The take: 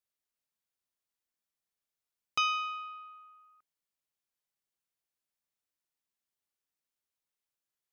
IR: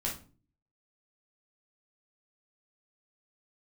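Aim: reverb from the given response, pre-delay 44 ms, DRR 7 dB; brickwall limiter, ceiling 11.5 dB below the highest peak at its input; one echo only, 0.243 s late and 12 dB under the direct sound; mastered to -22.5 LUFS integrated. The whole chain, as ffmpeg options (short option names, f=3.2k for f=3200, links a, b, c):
-filter_complex "[0:a]alimiter=level_in=5.5dB:limit=-24dB:level=0:latency=1,volume=-5.5dB,aecho=1:1:243:0.251,asplit=2[a][b];[1:a]atrim=start_sample=2205,adelay=44[c];[b][c]afir=irnorm=-1:irlink=0,volume=-10.5dB[d];[a][d]amix=inputs=2:normalize=0,volume=13dB"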